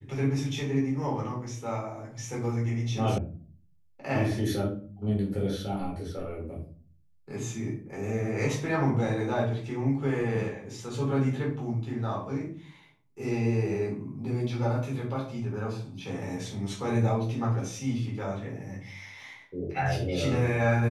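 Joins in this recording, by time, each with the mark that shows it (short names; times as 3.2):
3.18 sound cut off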